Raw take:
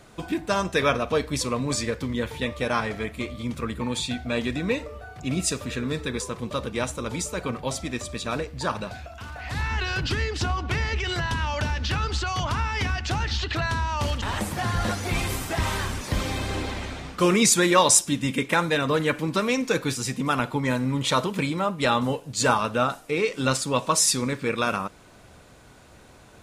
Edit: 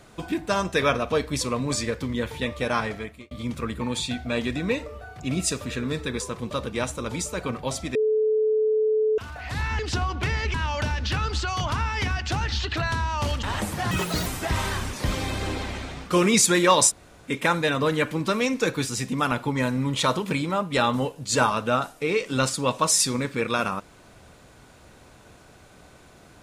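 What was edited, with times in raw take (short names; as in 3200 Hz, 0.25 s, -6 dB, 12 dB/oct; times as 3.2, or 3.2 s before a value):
2.86–3.31 fade out
7.95–9.18 bleep 433 Hz -18.5 dBFS
9.79–10.27 cut
11.02–11.33 cut
14.7–15.34 speed 182%
17.97–18.38 room tone, crossfade 0.06 s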